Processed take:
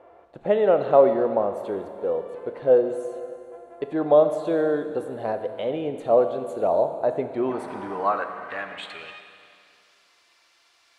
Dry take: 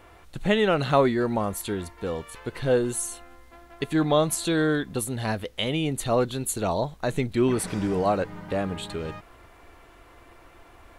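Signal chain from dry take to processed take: band-pass sweep 570 Hz -> 4900 Hz, 7.23–9.83; Schroeder reverb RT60 2.4 s, combs from 27 ms, DRR 8 dB; gain +7.5 dB

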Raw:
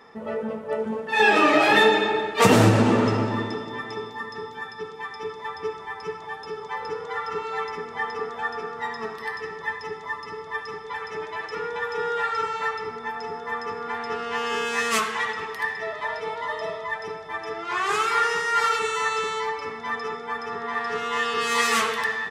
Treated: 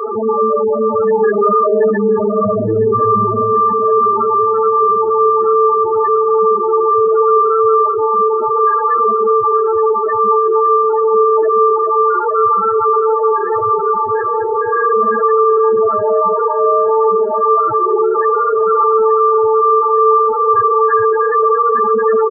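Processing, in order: per-bin compression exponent 0.2; LPF 1900 Hz 24 dB/oct; reverb RT60 0.90 s, pre-delay 3 ms, DRR 2 dB; loudest bins only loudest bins 4; low shelf 360 Hz -10 dB; feedback echo 0.871 s, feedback 58%, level -18.5 dB; in parallel at -3 dB: limiter -13.5 dBFS, peak gain reduction 9 dB; on the sum: HPF 58 Hz 12 dB/oct; attack slew limiter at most 580 dB/s

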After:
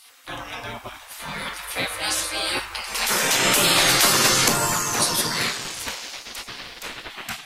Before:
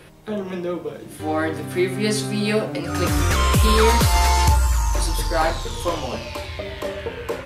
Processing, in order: dark delay 0.248 s, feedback 53%, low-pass 1100 Hz, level -15 dB; spectral gate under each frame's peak -20 dB weak; 5.57–7.1 ring modulator 710 Hz; gain +8 dB

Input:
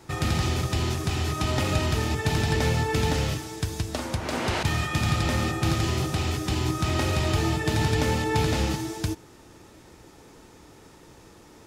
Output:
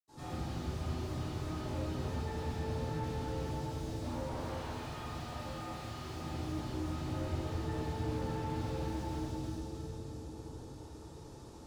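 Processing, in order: 4.32–6.12 tilt shelf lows -7.5 dB, about 710 Hz; limiter -22 dBFS, peak gain reduction 12 dB; graphic EQ 500/1000/2000/4000/8000 Hz +4/+5/-9/+5/+7 dB; split-band echo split 410 Hz, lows 0.659 s, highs 0.313 s, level -7.5 dB; soft clip -29 dBFS, distortion -11 dB; reverb RT60 1.3 s, pre-delay 77 ms; slew limiter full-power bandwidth 3.4 Hz; gain +10 dB

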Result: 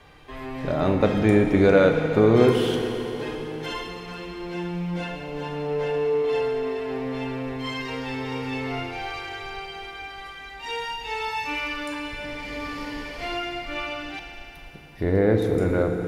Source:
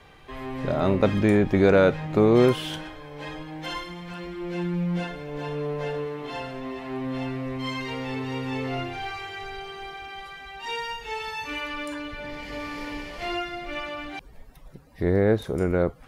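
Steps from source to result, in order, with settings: FDN reverb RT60 3.6 s, high-frequency decay 1×, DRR 3.5 dB

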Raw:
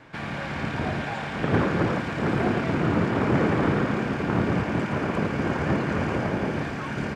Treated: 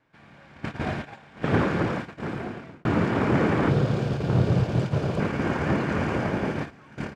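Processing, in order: gate -27 dBFS, range -19 dB; 1.62–2.85 fade out; 3.7–5.2 ten-band EQ 125 Hz +10 dB, 250 Hz -8 dB, 500 Hz +4 dB, 1000 Hz -5 dB, 2000 Hz -9 dB, 4000 Hz +5 dB

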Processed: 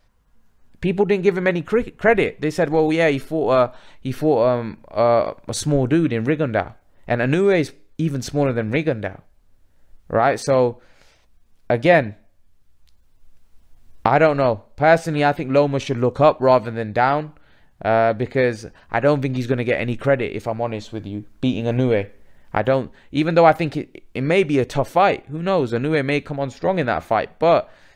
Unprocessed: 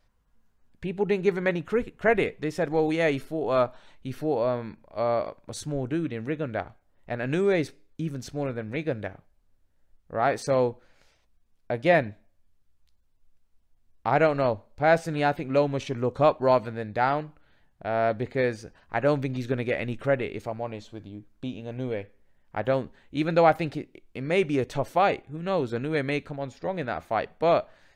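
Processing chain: recorder AGC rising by 5.6 dB/s; gain +6.5 dB

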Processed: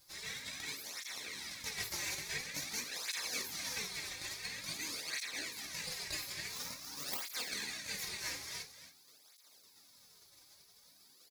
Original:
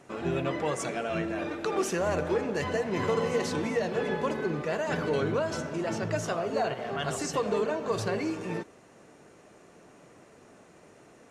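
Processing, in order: 6.49–7.22 minimum comb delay 0.92 ms; spectral gate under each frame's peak -30 dB weak; HPF 1400 Hz 24 dB/oct; high shelf 10000 Hz +11.5 dB; in parallel at -0.5 dB: compressor, threshold -59 dBFS, peak gain reduction 16.5 dB; on the sum: fixed phaser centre 2000 Hz, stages 8; half-wave rectifier; echo 0.27 s -11 dB; on a send at -4 dB: reverb, pre-delay 3 ms; on the sum: tape flanging out of phase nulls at 0.48 Hz, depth 4.7 ms; gain +15.5 dB

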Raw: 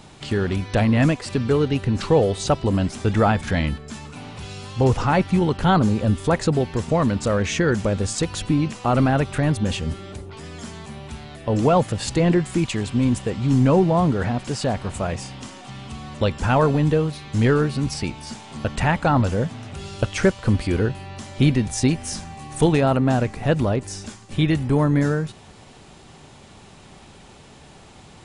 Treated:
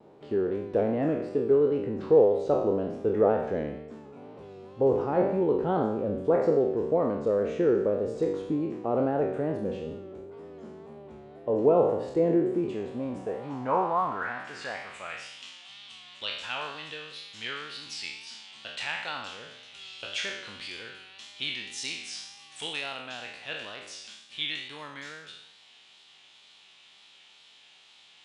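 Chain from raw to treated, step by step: spectral trails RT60 0.85 s; band-pass sweep 440 Hz -> 3300 Hz, 12.63–15.57; wow and flutter 58 cents; gain -1 dB

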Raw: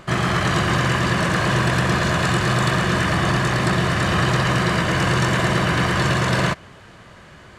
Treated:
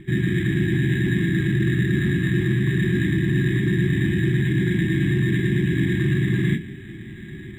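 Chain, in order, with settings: low shelf 220 Hz +5 dB; reverb RT60 0.25 s, pre-delay 3 ms, DRR 0.5 dB; reverse; compressor 6:1, threshold -16 dBFS, peak gain reduction 12 dB; reverse; brick-wall FIR band-stop 390–1600 Hz; high shelf 3800 Hz -11.5 dB; decimation joined by straight lines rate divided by 8×

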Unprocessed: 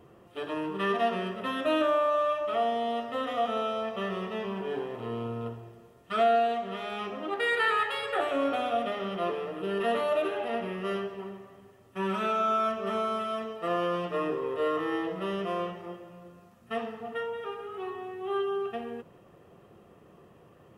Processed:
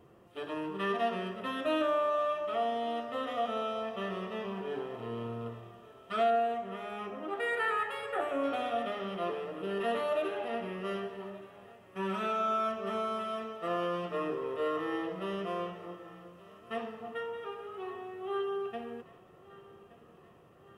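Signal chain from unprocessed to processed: 6.3–8.44 bell 4100 Hz -10 dB 1 oct; thinning echo 1.173 s, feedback 62%, high-pass 370 Hz, level -19 dB; gain -4 dB

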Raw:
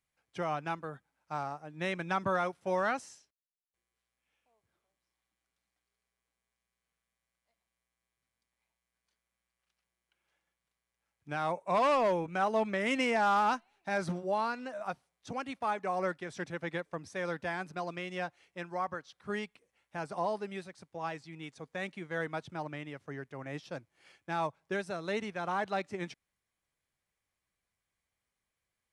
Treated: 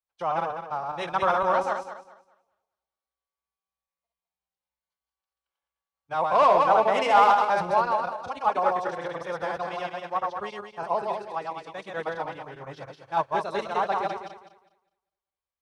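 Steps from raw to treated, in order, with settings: regenerating reverse delay 0.189 s, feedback 59%, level -2 dB; ten-band EQ 125 Hz -4 dB, 250 Hz -9 dB, 500 Hz +3 dB, 1000 Hz +8 dB, 2000 Hz -5 dB, 4000 Hz +3 dB, 8000 Hz -6 dB; in parallel at -4 dB: soft clip -20.5 dBFS, distortion -14 dB; on the sum: time stretch by phase-locked vocoder 0.54×; three-band expander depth 40%

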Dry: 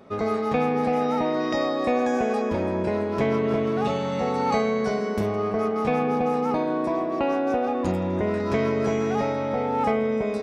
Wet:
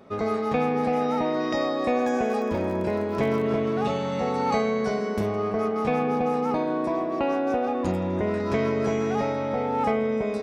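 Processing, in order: 2–3.48 crackle 39/s -33 dBFS; gain -1 dB

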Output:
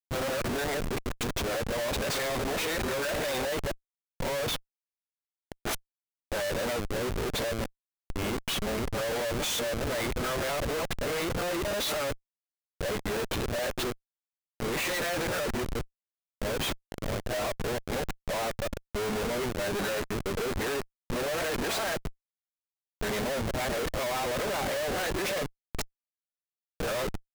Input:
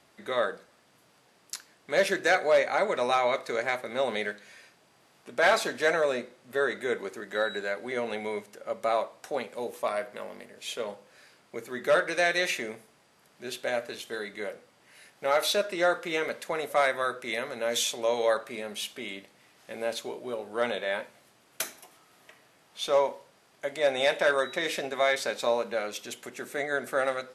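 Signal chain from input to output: whole clip reversed; Schmitt trigger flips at -37.5 dBFS

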